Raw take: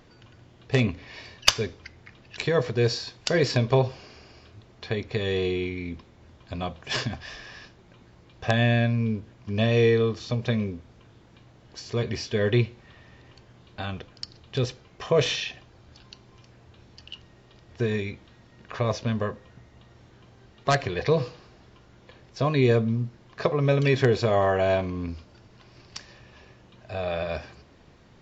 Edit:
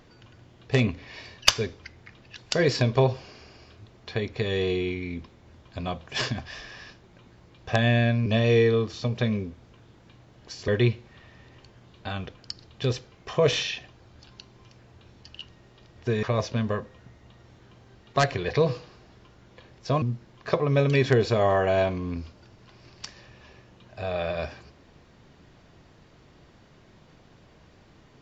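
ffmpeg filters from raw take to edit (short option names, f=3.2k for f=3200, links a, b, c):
-filter_complex "[0:a]asplit=6[a][b][c][d][e][f];[a]atrim=end=2.382[g];[b]atrim=start=3.128:end=9.012[h];[c]atrim=start=9.528:end=11.952[i];[d]atrim=start=12.408:end=17.962[j];[e]atrim=start=18.738:end=22.532[k];[f]atrim=start=22.938[l];[g][h]acrossfade=d=0.004:c1=hsin:c2=hsin[m];[m][i]acrossfade=d=0.004:c1=hsin:c2=hsin[n];[n][j]acrossfade=d=0.004:c1=hsin:c2=hsin[o];[o][k]acrossfade=d=0.004:c1=hsin:c2=hsin[p];[p][l]acrossfade=d=0.004:c1=hsin:c2=hsin"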